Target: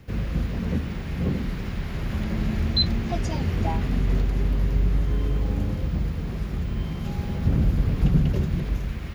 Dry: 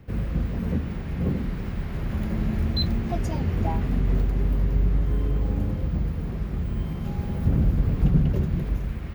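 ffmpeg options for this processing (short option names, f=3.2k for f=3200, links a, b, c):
-filter_complex "[0:a]acrossover=split=5800[a][b];[b]acompressor=threshold=-60dB:ratio=4:attack=1:release=60[c];[a][c]amix=inputs=2:normalize=0,equalizer=f=7.5k:t=o:w=2.9:g=10"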